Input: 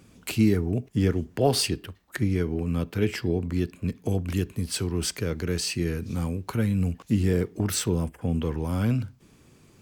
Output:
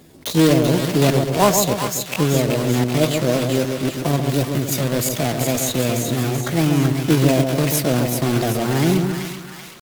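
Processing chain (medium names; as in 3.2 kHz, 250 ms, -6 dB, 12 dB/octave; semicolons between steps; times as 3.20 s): block-companded coder 3-bit; pitch shift +6.5 st; two-band feedback delay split 1 kHz, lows 137 ms, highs 383 ms, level -5 dB; trim +6 dB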